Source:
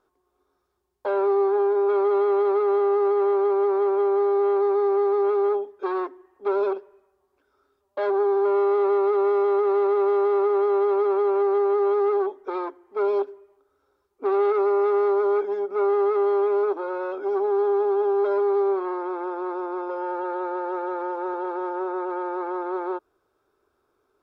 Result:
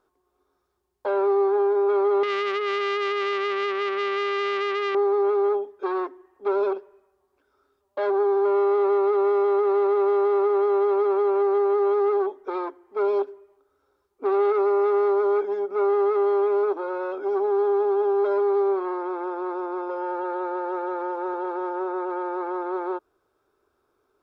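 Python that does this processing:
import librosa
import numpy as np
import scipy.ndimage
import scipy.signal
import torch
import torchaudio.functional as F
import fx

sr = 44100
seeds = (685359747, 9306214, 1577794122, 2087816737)

y = fx.transformer_sat(x, sr, knee_hz=1600.0, at=(2.23, 4.95))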